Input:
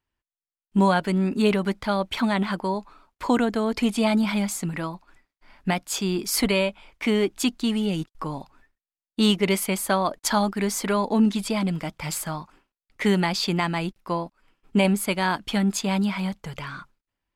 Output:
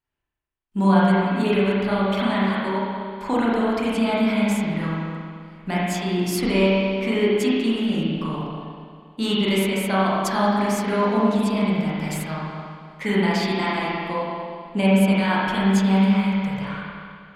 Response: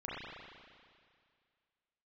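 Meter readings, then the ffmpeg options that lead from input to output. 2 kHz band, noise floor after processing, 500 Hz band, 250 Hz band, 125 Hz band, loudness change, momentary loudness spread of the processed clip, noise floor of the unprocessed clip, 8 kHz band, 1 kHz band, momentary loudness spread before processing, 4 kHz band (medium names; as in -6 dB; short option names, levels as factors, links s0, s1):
+3.0 dB, -46 dBFS, +3.5 dB, +3.5 dB, +4.0 dB, +2.5 dB, 13 LU, under -85 dBFS, -5.5 dB, +3.0 dB, 12 LU, 0.0 dB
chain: -filter_complex "[1:a]atrim=start_sample=2205[s0];[0:a][s0]afir=irnorm=-1:irlink=0"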